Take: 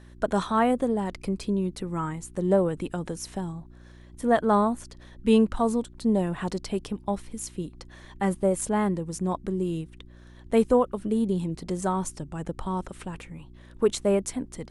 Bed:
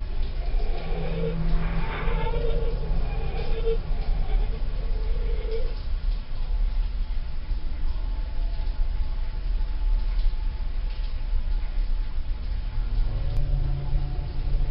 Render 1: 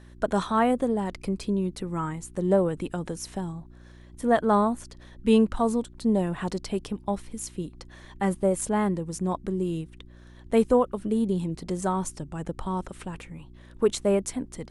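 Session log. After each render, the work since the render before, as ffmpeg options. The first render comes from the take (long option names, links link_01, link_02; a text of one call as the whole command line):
ffmpeg -i in.wav -af anull out.wav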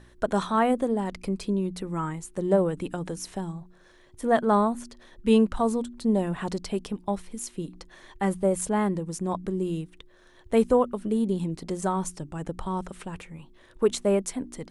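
ffmpeg -i in.wav -af "bandreject=frequency=60:width_type=h:width=4,bandreject=frequency=120:width_type=h:width=4,bandreject=frequency=180:width_type=h:width=4,bandreject=frequency=240:width_type=h:width=4,bandreject=frequency=300:width_type=h:width=4" out.wav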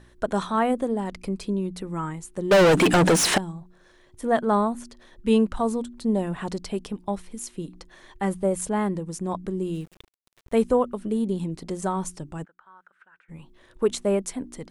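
ffmpeg -i in.wav -filter_complex "[0:a]asettb=1/sr,asplit=3[link_01][link_02][link_03];[link_01]atrim=end=2.514[link_04];[link_02]atrim=start=2.51:end=3.38,asetpts=PTS-STARTPTS,afade=type=in:duration=0.004:curve=qsin,afade=type=out:start_time=0.866:duration=0.004:curve=qsin,asplit=2[link_05][link_06];[link_06]highpass=frequency=720:poles=1,volume=40dB,asoftclip=type=tanh:threshold=-9dB[link_07];[link_05][link_07]amix=inputs=2:normalize=0,lowpass=frequency=4200:poles=1,volume=-6dB[link_08];[link_03]atrim=start=3.376[link_09];[link_04][link_08]acrossfade=duration=0.004:curve1=hsin:curve2=qsin[link_10];[link_10][link_09]acrossfade=duration=0.004:curve1=qsin:curve2=hsin,asettb=1/sr,asplit=3[link_11][link_12][link_13];[link_11]atrim=end=9.744[link_14];[link_12]atrim=start=9.74:end=10.58,asetpts=PTS-STARTPTS,afade=type=in:duration=0.004:curve=qsin,afade=type=out:start_time=0.836:duration=0.004:curve=qsin,aeval=exprs='val(0)*gte(abs(val(0)),0.00422)':channel_layout=same[link_15];[link_13]atrim=start=10.576[link_16];[link_14][link_15]acrossfade=duration=0.004:curve1=hsin:curve2=qsin[link_17];[link_17][link_16]acrossfade=duration=0.004:curve1=qsin:curve2=hsin,asplit=3[link_18][link_19][link_20];[link_18]afade=type=out:start_time=12.44:duration=0.02[link_21];[link_19]bandpass=frequency=1500:width_type=q:width=9.5,afade=type=in:start_time=12.44:duration=0.02,afade=type=out:start_time=13.28:duration=0.02[link_22];[link_20]afade=type=in:start_time=13.28:duration=0.02[link_23];[link_21][link_22][link_23]amix=inputs=3:normalize=0" out.wav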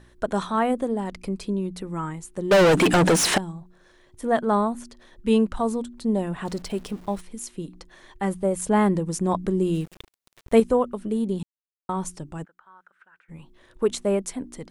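ffmpeg -i in.wav -filter_complex "[0:a]asettb=1/sr,asplit=3[link_01][link_02][link_03];[link_01]atrim=end=6.454[link_04];[link_02]atrim=start=6.45:end=7.21,asetpts=PTS-STARTPTS,afade=type=in:duration=0.004:curve=qsin,afade=type=out:start_time=0.756:duration=0.004:curve=qsin,aeval=exprs='val(0)+0.5*0.00708*sgn(val(0))':channel_layout=same[link_05];[link_03]atrim=start=7.206[link_06];[link_04][link_05]acrossfade=duration=0.004:curve1=hsin:curve2=qsin[link_07];[link_07][link_06]acrossfade=duration=0.004:curve1=qsin:curve2=hsin,asettb=1/sr,asplit=3[link_08][link_09][link_10];[link_08]atrim=end=8.694[link_11];[link_09]atrim=start=8.69:end=10.6,asetpts=PTS-STARTPTS,afade=type=in:duration=0.004:curve=qsin,afade=type=out:start_time=1.906:duration=0.004:curve=qsin,acontrast=40[link_12];[link_10]atrim=start=10.596[link_13];[link_11][link_12]acrossfade=duration=0.004:curve1=hsin:curve2=qsin[link_14];[link_14][link_13]acrossfade=duration=0.004:curve1=qsin:curve2=hsin,asplit=3[link_15][link_16][link_17];[link_15]atrim=end=11.43,asetpts=PTS-STARTPTS,afade=type=out:start_time=11.426:duration=0.004:curve=hsin[link_18];[link_16]atrim=start=11.43:end=11.89,asetpts=PTS-STARTPTS,volume=0[link_19];[link_17]atrim=start=11.89,asetpts=PTS-STARTPTS,afade=type=in:duration=0.004:curve=hsin[link_20];[link_18][link_19][link_20]concat=n=3:v=0:a=1" out.wav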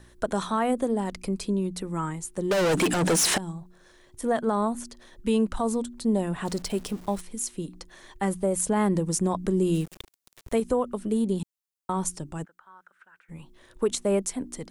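ffmpeg -i in.wav -filter_complex "[0:a]acrossover=split=380|5000[link_01][link_02][link_03];[link_03]acontrast=52[link_04];[link_01][link_02][link_04]amix=inputs=3:normalize=0,alimiter=limit=-15dB:level=0:latency=1:release=109" out.wav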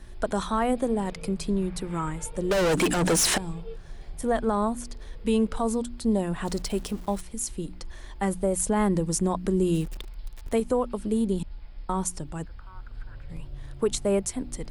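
ffmpeg -i in.wav -i bed.wav -filter_complex "[1:a]volume=-14.5dB[link_01];[0:a][link_01]amix=inputs=2:normalize=0" out.wav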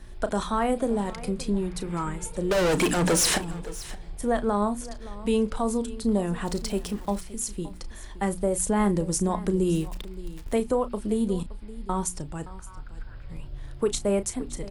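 ffmpeg -i in.wav -filter_complex "[0:a]asplit=2[link_01][link_02];[link_02]adelay=34,volume=-12.5dB[link_03];[link_01][link_03]amix=inputs=2:normalize=0,aecho=1:1:570:0.133" out.wav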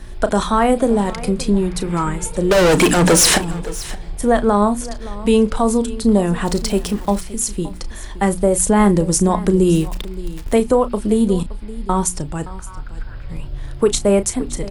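ffmpeg -i in.wav -af "volume=10dB" out.wav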